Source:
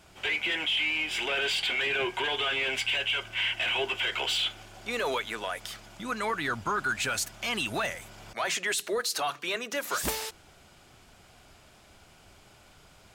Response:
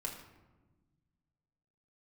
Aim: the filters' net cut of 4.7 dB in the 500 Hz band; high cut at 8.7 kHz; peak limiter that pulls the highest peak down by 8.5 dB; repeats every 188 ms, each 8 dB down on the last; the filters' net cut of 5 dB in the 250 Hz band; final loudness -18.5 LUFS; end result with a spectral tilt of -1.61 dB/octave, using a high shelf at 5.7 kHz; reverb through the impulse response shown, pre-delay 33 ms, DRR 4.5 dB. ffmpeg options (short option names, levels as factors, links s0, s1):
-filter_complex "[0:a]lowpass=8700,equalizer=f=250:t=o:g=-5,equalizer=f=500:t=o:g=-4.5,highshelf=f=5700:g=-4.5,alimiter=level_in=1.5:limit=0.0631:level=0:latency=1,volume=0.668,aecho=1:1:188|376|564|752|940:0.398|0.159|0.0637|0.0255|0.0102,asplit=2[s0][s1];[1:a]atrim=start_sample=2205,adelay=33[s2];[s1][s2]afir=irnorm=-1:irlink=0,volume=0.596[s3];[s0][s3]amix=inputs=2:normalize=0,volume=5.31"